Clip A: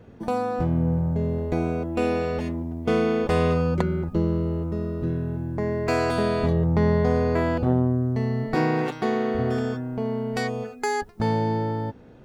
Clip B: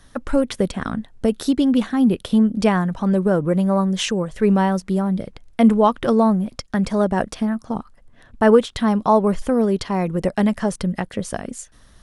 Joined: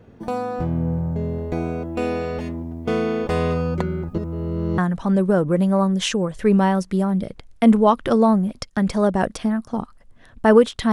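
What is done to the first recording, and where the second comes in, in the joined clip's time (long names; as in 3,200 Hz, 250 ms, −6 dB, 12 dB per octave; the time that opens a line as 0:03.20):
clip A
0:04.18–0:04.78: reverse
0:04.78: continue with clip B from 0:02.75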